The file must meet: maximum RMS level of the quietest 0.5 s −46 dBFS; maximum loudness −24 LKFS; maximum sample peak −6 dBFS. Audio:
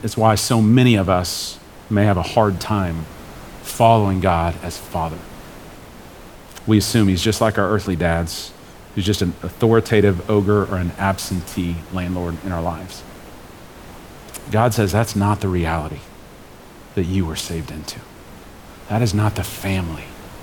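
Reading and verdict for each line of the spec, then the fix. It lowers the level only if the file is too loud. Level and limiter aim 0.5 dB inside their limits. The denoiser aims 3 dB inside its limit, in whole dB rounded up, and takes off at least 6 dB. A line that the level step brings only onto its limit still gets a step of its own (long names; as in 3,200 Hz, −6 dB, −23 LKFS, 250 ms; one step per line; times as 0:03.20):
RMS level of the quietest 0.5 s −41 dBFS: out of spec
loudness −19.0 LKFS: out of spec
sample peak −1.5 dBFS: out of spec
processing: level −5.5 dB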